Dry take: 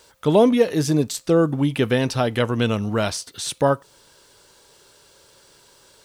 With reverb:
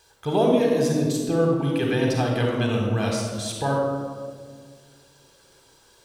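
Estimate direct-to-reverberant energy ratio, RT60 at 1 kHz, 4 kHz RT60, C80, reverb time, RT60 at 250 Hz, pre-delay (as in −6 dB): 0.0 dB, 1.5 s, 0.90 s, 3.0 dB, 1.8 s, 2.6 s, 36 ms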